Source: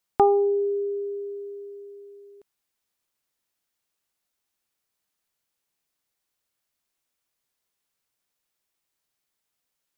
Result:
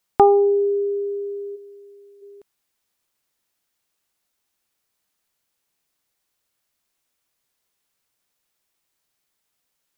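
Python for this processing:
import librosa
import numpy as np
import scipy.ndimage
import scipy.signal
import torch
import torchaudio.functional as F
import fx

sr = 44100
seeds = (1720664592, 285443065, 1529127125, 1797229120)

y = fx.highpass(x, sr, hz=910.0, slope=6, at=(1.55, 2.21), fade=0.02)
y = y * librosa.db_to_amplitude(5.0)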